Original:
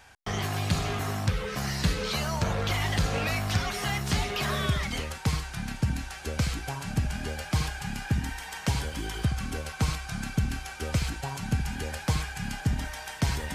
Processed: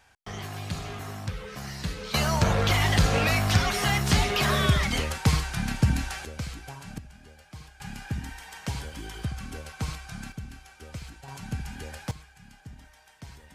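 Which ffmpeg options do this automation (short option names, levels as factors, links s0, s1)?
-af "asetnsamples=n=441:p=0,asendcmd='2.14 volume volume 5dB;6.25 volume volume -7dB;6.98 volume volume -17.5dB;7.8 volume volume -5dB;10.32 volume volume -12dB;11.28 volume volume -5.5dB;12.11 volume volume -18dB',volume=0.473"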